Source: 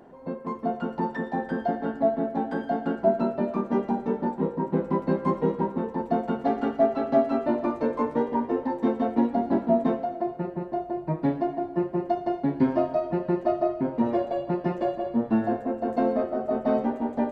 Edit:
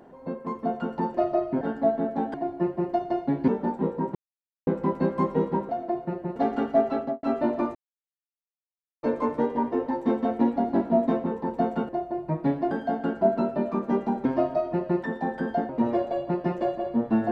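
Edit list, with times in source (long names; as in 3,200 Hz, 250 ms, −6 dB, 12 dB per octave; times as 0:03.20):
0:01.14–0:01.80: swap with 0:13.42–0:13.89
0:02.53–0:04.07: swap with 0:11.50–0:12.64
0:04.74: splice in silence 0.52 s
0:05.76–0:06.41: swap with 0:10.01–0:10.68
0:07.00–0:07.28: fade out and dull
0:07.80: splice in silence 1.28 s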